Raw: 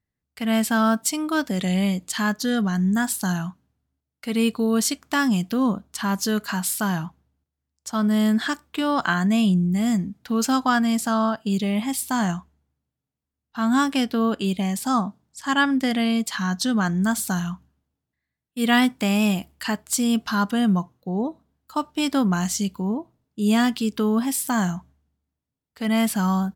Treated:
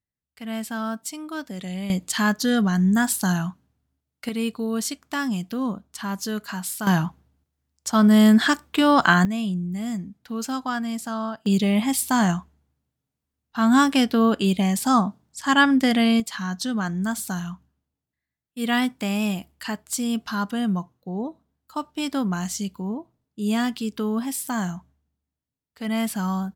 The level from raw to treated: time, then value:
−9 dB
from 0:01.90 +2 dB
from 0:04.29 −5 dB
from 0:06.87 +5.5 dB
from 0:09.25 −7 dB
from 0:11.46 +3 dB
from 0:16.20 −4 dB

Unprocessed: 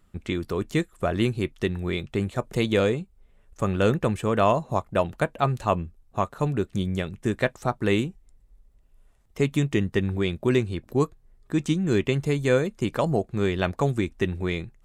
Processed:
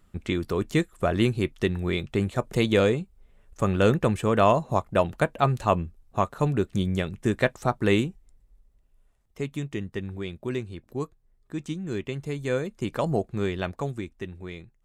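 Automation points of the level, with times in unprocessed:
0:07.94 +1 dB
0:09.51 −8.5 dB
0:12.14 −8.5 dB
0:13.22 −1 dB
0:14.28 −11 dB

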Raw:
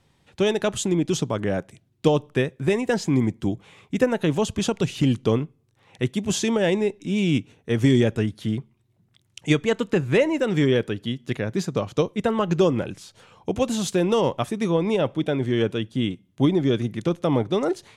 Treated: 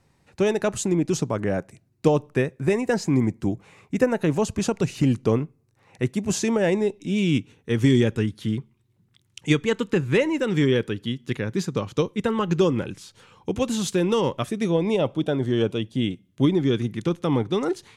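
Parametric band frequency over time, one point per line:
parametric band −11 dB 0.33 octaves
0:06.76 3,300 Hz
0:07.26 660 Hz
0:14.25 660 Hz
0:15.42 2,500 Hz
0:16.59 620 Hz

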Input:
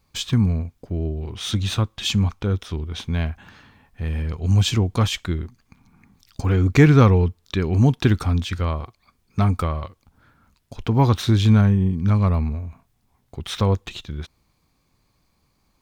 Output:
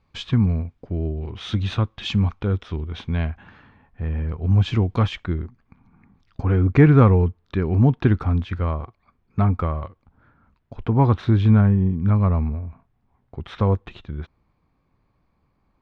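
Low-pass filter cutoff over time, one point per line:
0:03.22 2,800 Hz
0:04.06 1,700 Hz
0:04.60 1,700 Hz
0:04.83 3,300 Hz
0:05.30 1,800 Hz

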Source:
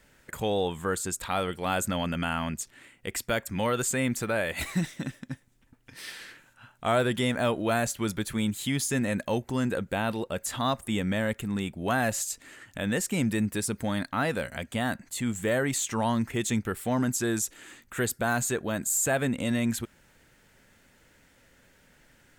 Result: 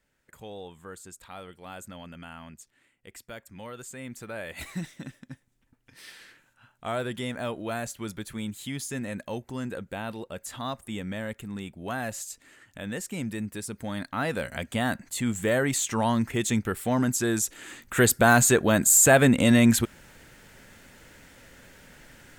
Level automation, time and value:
0:03.92 −14 dB
0:04.63 −6 dB
0:13.69 −6 dB
0:14.59 +2 dB
0:17.37 +2 dB
0:18.11 +9 dB

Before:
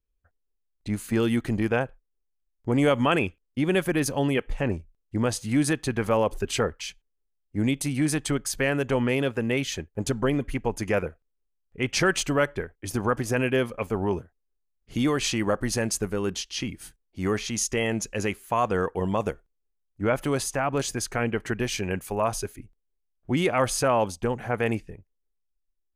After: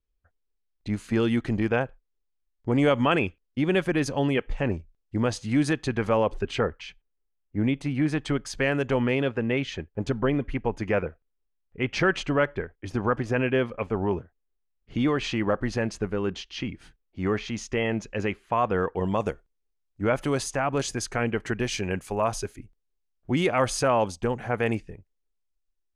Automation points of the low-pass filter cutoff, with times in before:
0:06.09 5,600 Hz
0:06.67 2,700 Hz
0:08.04 2,700 Hz
0:08.72 6,600 Hz
0:09.43 3,200 Hz
0:18.74 3,200 Hz
0:19.28 8,100 Hz

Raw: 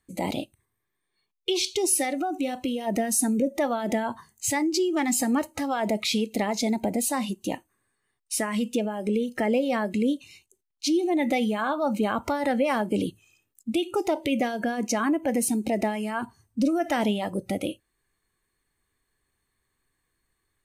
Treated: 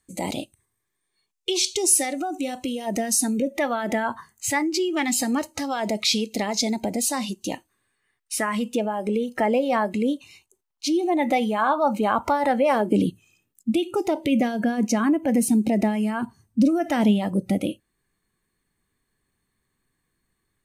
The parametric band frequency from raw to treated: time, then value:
parametric band +8.5 dB 1.2 octaves
0:02.92 7,500 Hz
0:03.90 1,400 Hz
0:04.59 1,400 Hz
0:05.37 5,300 Hz
0:07.51 5,300 Hz
0:08.66 940 Hz
0:12.61 940 Hz
0:13.04 190 Hz

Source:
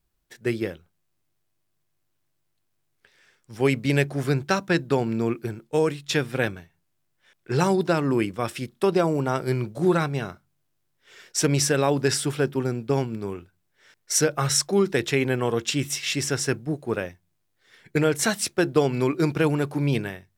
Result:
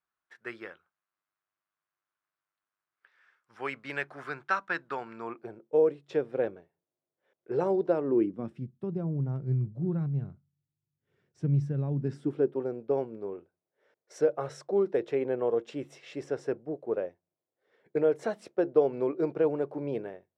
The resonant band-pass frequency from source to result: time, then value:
resonant band-pass, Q 2.2
0:05.15 1,300 Hz
0:05.64 490 Hz
0:08.03 490 Hz
0:08.73 130 Hz
0:11.90 130 Hz
0:12.58 520 Hz

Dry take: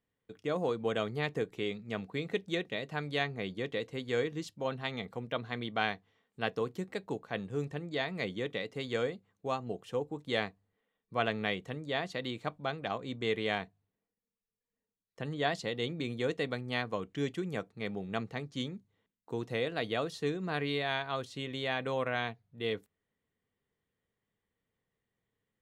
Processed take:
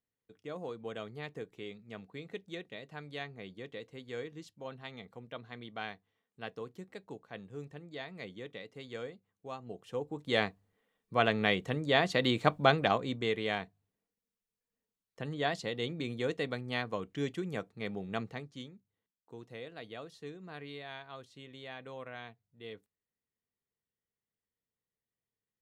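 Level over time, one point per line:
0:09.51 −9 dB
0:10.43 +3.5 dB
0:11.27 +3.5 dB
0:12.72 +11 dB
0:13.34 −1 dB
0:18.27 −1 dB
0:18.74 −12 dB

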